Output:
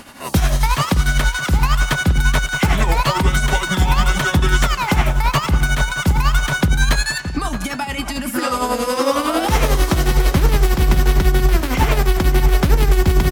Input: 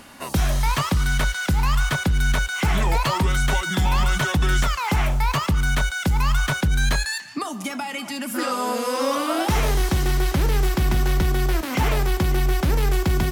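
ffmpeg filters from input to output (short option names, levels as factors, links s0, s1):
-filter_complex "[0:a]asplit=2[s0][s1];[s1]adelay=620,lowpass=f=2000:p=1,volume=0.299,asplit=2[s2][s3];[s3]adelay=620,lowpass=f=2000:p=1,volume=0.52,asplit=2[s4][s5];[s5]adelay=620,lowpass=f=2000:p=1,volume=0.52,asplit=2[s6][s7];[s7]adelay=620,lowpass=f=2000:p=1,volume=0.52,asplit=2[s8][s9];[s9]adelay=620,lowpass=f=2000:p=1,volume=0.52,asplit=2[s10][s11];[s11]adelay=620,lowpass=f=2000:p=1,volume=0.52[s12];[s2][s4][s6][s8][s10][s12]amix=inputs=6:normalize=0[s13];[s0][s13]amix=inputs=2:normalize=0,tremolo=f=11:d=0.56,volume=2.24"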